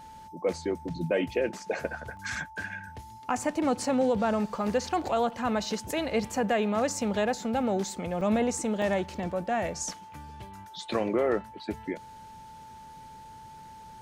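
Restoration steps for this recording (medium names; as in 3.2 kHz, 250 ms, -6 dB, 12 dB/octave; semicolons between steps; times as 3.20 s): band-stop 880 Hz, Q 30; interpolate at 2.17/6.32/8.21/8.82/10.14 s, 2 ms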